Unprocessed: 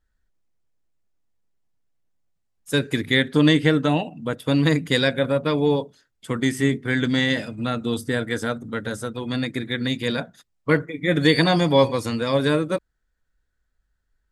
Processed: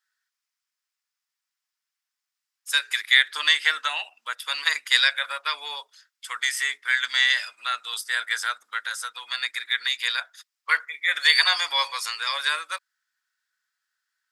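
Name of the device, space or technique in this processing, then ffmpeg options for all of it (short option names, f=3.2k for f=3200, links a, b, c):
headphones lying on a table: -af "highpass=f=1.2k:w=0.5412,highpass=f=1.2k:w=1.3066,equalizer=f=5.1k:t=o:w=0.28:g=6,volume=4.5dB"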